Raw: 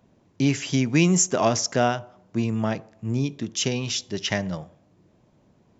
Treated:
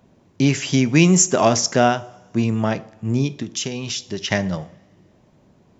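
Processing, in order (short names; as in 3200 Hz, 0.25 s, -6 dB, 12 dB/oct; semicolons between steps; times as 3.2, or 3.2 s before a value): 3.37–4.31 compressor 6:1, threshold -28 dBFS, peak gain reduction 9 dB; two-slope reverb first 0.42 s, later 2 s, from -18 dB, DRR 15.5 dB; gain +5 dB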